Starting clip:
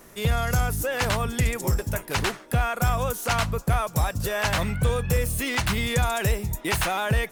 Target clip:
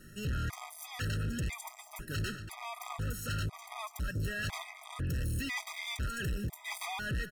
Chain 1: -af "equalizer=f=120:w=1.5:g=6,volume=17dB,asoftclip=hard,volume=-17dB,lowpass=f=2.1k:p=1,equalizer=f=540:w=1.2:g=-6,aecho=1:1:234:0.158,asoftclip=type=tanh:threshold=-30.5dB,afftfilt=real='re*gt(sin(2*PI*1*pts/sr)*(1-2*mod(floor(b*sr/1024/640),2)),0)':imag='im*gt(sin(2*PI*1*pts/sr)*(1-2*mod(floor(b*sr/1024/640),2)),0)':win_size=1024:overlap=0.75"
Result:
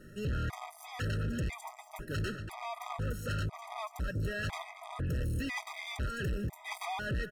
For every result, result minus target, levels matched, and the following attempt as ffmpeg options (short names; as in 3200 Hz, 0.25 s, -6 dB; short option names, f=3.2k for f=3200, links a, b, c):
8000 Hz band -6.0 dB; 500 Hz band +5.0 dB; overloaded stage: distortion -7 dB
-af "equalizer=f=120:w=1.5:g=6,volume=17dB,asoftclip=hard,volume=-17dB,lowpass=f=5.8k:p=1,equalizer=f=540:w=1.2:g=-6,aecho=1:1:234:0.158,asoftclip=type=tanh:threshold=-30.5dB,afftfilt=real='re*gt(sin(2*PI*1*pts/sr)*(1-2*mod(floor(b*sr/1024/640),2)),0)':imag='im*gt(sin(2*PI*1*pts/sr)*(1-2*mod(floor(b*sr/1024/640),2)),0)':win_size=1024:overlap=0.75"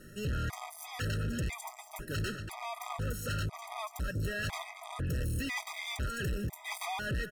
overloaded stage: distortion -7 dB; 500 Hz band +4.0 dB
-af "equalizer=f=120:w=1.5:g=6,volume=23.5dB,asoftclip=hard,volume=-23.5dB,lowpass=f=5.8k:p=1,equalizer=f=540:w=1.2:g=-6,aecho=1:1:234:0.158,asoftclip=type=tanh:threshold=-30.5dB,afftfilt=real='re*gt(sin(2*PI*1*pts/sr)*(1-2*mod(floor(b*sr/1024/640),2)),0)':imag='im*gt(sin(2*PI*1*pts/sr)*(1-2*mod(floor(b*sr/1024/640),2)),0)':win_size=1024:overlap=0.75"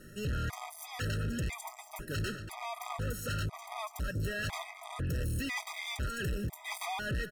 500 Hz band +4.5 dB
-af "equalizer=f=120:w=1.5:g=6,volume=23.5dB,asoftclip=hard,volume=-23.5dB,lowpass=f=5.8k:p=1,equalizer=f=540:w=1.2:g=-14.5,aecho=1:1:234:0.158,asoftclip=type=tanh:threshold=-30.5dB,afftfilt=real='re*gt(sin(2*PI*1*pts/sr)*(1-2*mod(floor(b*sr/1024/640),2)),0)':imag='im*gt(sin(2*PI*1*pts/sr)*(1-2*mod(floor(b*sr/1024/640),2)),0)':win_size=1024:overlap=0.75"